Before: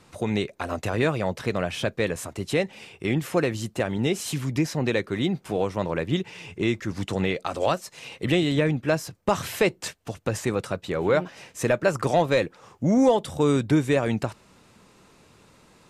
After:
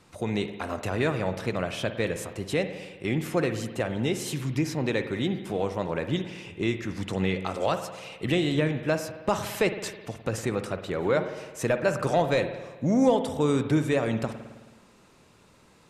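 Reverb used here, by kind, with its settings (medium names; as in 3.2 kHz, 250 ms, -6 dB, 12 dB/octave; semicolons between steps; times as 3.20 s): spring tank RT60 1.3 s, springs 53 ms, chirp 40 ms, DRR 8.5 dB; trim -3 dB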